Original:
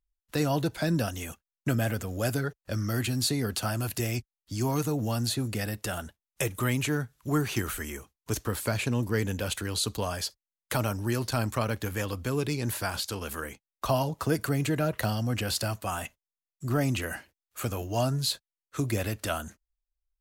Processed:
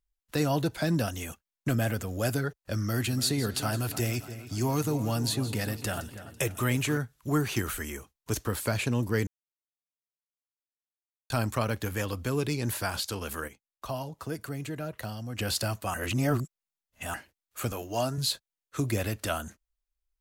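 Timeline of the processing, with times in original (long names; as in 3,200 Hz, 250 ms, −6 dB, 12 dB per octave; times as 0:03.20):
0:00.85–0:02.26: hard clipping −19.5 dBFS
0:02.82–0:06.98: echo with a time of its own for lows and highs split 2,800 Hz, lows 290 ms, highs 166 ms, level −13 dB
0:09.27–0:11.30: silence
0:13.48–0:15.39: clip gain −8.5 dB
0:15.94–0:17.14: reverse
0:17.72–0:18.18: high-pass filter 250 Hz 6 dB per octave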